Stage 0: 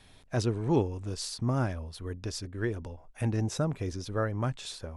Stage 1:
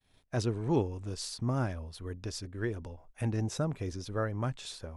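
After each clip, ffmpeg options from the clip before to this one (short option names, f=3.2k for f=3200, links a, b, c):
-af "agate=range=-33dB:threshold=-48dB:ratio=3:detection=peak,volume=-2.5dB"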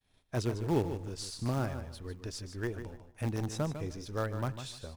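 -filter_complex "[0:a]asplit=2[a][b];[b]acrusher=bits=5:dc=4:mix=0:aa=0.000001,volume=-11dB[c];[a][c]amix=inputs=2:normalize=0,aecho=1:1:150|300|450:0.316|0.0727|0.0167,volume=-3.5dB"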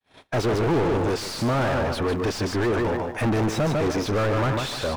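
-filter_complex "[0:a]asplit=2[a][b];[b]highpass=f=720:p=1,volume=42dB,asoftclip=type=tanh:threshold=-17.5dB[c];[a][c]amix=inputs=2:normalize=0,lowpass=f=1.2k:p=1,volume=-6dB,agate=range=-33dB:threshold=-37dB:ratio=3:detection=peak,volume=3dB"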